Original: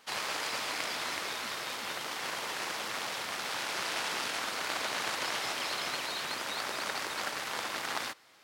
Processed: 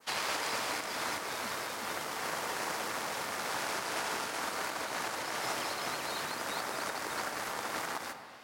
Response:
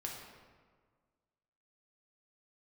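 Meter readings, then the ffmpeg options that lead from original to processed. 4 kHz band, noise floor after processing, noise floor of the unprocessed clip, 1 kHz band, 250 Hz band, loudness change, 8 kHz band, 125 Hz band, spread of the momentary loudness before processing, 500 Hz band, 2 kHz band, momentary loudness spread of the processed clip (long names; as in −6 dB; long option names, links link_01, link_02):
−4.0 dB, −41 dBFS, −40 dBFS, +1.0 dB, +2.0 dB, −1.0 dB, 0.0 dB, +2.5 dB, 3 LU, +2.0 dB, −1.5 dB, 3 LU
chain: -filter_complex "[0:a]asplit=2[link_01][link_02];[1:a]atrim=start_sample=2205[link_03];[link_02][link_03]afir=irnorm=-1:irlink=0,volume=-3.5dB[link_04];[link_01][link_04]amix=inputs=2:normalize=0,alimiter=limit=-19.5dB:level=0:latency=1:release=202,adynamicequalizer=threshold=0.00355:dfrequency=3300:dqfactor=0.86:tfrequency=3300:tqfactor=0.86:attack=5:release=100:ratio=0.375:range=4:mode=cutabove:tftype=bell"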